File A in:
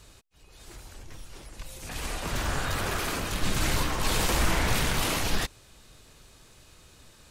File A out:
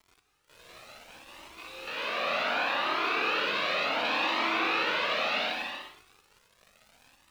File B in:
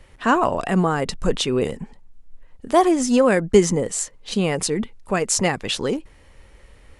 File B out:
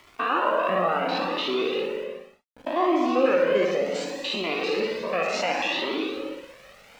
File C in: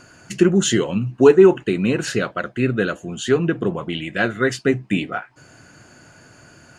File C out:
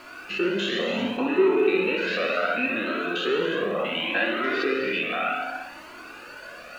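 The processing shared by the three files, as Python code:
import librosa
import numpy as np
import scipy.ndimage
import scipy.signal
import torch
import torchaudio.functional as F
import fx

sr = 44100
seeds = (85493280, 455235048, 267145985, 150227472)

p1 = fx.spec_steps(x, sr, hold_ms=100)
p2 = fx.cabinet(p1, sr, low_hz=280.0, low_slope=24, high_hz=4600.0, hz=(390.0, 560.0, 1200.0, 2600.0, 3900.0), db=(-4, 4, 5, 10, 6))
p3 = fx.room_flutter(p2, sr, wall_m=10.4, rt60_s=0.63)
p4 = fx.over_compress(p3, sr, threshold_db=-32.0, ratio=-1.0)
p5 = p3 + (p4 * librosa.db_to_amplitude(0.0))
p6 = np.where(np.abs(p5) >= 10.0 ** (-39.5 / 20.0), p5, 0.0)
p7 = fx.high_shelf(p6, sr, hz=3200.0, db=-8.0)
p8 = fx.rev_gated(p7, sr, seeds[0], gate_ms=390, shape='flat', drr_db=3.5)
y = fx.comb_cascade(p8, sr, direction='rising', hz=0.68)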